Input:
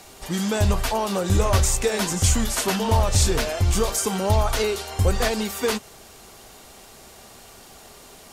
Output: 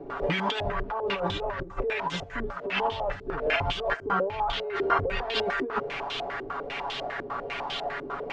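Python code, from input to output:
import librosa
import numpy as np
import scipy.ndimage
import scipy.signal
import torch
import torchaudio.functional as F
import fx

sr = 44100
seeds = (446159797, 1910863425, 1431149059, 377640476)

y = fx.low_shelf(x, sr, hz=410.0, db=-10.5)
y = y + 0.98 * np.pad(y, (int(7.1 * sr / 1000.0), 0))[:len(y)]
y = fx.over_compress(y, sr, threshold_db=-34.0, ratio=-1.0)
y = fx.air_absorb(y, sr, metres=82.0)
y = y + 10.0 ** (-18.0 / 20.0) * np.pad(y, (int(410 * sr / 1000.0), 0))[:len(y)]
y = fx.filter_held_lowpass(y, sr, hz=10.0, low_hz=360.0, high_hz=3300.0)
y = y * librosa.db_to_amplitude(3.0)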